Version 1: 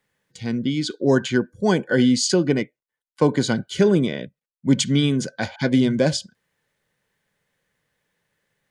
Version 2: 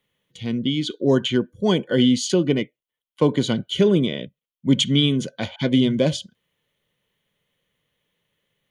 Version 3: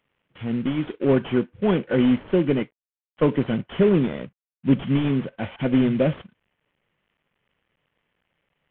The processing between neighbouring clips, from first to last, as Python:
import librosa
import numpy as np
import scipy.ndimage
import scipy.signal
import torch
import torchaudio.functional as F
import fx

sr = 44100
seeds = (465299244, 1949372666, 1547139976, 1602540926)

y1 = fx.graphic_eq_31(x, sr, hz=(800, 1600, 3150, 5000, 8000), db=(-6, -10, 10, -10, -9))
y2 = fx.cvsd(y1, sr, bps=16000)